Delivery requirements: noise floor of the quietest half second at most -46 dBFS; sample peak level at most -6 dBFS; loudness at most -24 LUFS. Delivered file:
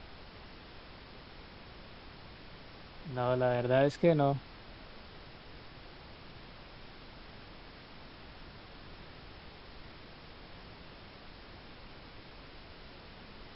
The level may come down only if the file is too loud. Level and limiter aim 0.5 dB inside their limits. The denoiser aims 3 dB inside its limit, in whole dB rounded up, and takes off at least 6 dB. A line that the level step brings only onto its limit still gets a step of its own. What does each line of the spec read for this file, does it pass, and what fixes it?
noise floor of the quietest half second -51 dBFS: OK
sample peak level -13.5 dBFS: OK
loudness -30.0 LUFS: OK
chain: none

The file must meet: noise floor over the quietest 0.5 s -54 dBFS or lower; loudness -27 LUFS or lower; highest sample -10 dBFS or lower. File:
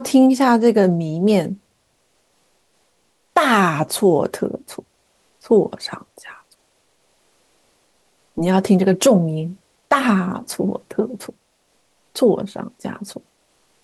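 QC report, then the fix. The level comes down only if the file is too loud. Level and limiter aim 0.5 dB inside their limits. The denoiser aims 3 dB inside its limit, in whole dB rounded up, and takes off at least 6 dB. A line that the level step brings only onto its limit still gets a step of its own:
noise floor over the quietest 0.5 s -64 dBFS: OK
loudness -18.0 LUFS: fail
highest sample -4.0 dBFS: fail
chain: gain -9.5 dB

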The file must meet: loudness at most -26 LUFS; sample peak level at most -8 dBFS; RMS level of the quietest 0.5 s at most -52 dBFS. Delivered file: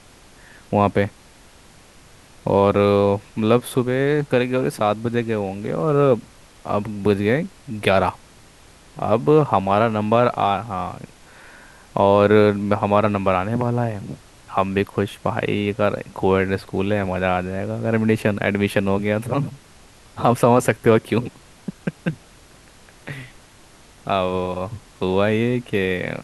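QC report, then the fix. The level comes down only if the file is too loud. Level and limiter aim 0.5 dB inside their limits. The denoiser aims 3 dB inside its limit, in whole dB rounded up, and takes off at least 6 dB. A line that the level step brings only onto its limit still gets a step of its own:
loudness -20.5 LUFS: fail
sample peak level -2.5 dBFS: fail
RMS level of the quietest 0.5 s -48 dBFS: fail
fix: gain -6 dB

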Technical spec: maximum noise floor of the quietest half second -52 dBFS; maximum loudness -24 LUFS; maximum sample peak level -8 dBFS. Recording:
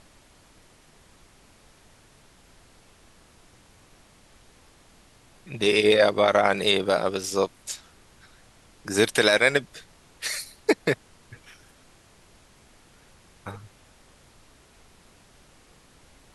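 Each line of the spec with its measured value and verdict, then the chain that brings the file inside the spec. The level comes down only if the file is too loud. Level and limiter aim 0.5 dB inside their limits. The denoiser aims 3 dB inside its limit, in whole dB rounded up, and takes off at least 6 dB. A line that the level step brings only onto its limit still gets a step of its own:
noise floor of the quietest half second -56 dBFS: OK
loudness -23.0 LUFS: fail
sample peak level -3.0 dBFS: fail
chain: gain -1.5 dB; limiter -8.5 dBFS

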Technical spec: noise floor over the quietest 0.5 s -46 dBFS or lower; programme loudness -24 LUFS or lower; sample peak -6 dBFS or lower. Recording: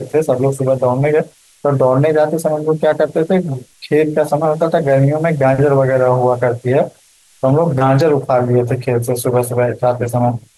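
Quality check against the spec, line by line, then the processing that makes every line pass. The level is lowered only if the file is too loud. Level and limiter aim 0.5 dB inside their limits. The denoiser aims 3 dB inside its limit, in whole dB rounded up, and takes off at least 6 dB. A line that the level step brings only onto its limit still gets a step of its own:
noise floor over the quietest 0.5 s -50 dBFS: OK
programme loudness -14.5 LUFS: fail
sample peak -3.5 dBFS: fail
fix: gain -10 dB

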